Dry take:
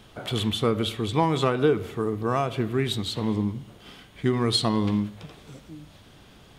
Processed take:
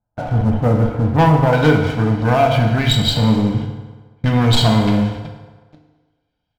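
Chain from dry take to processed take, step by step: tracing distortion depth 0.1 ms; LPF 1200 Hz 24 dB/oct, from 1.53 s 5300 Hz; gate -38 dBFS, range -23 dB; comb 1.3 ms, depth 84%; sample leveller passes 3; FDN reverb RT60 1.4 s, low-frequency decay 0.8×, high-frequency decay 0.7×, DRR 2 dB; gain -1 dB

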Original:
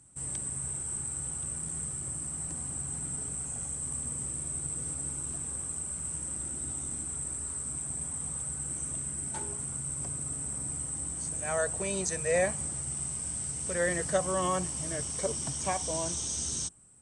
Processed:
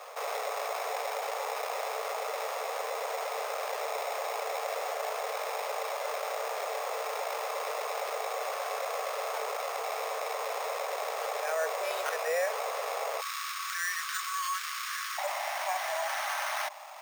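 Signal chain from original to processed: sample-rate reducer 7600 Hz, jitter 0%; rippled Chebyshev high-pass 430 Hz, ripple 3 dB, from 13.2 s 1100 Hz, from 15.17 s 590 Hz; fast leveller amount 50%; gain -1.5 dB

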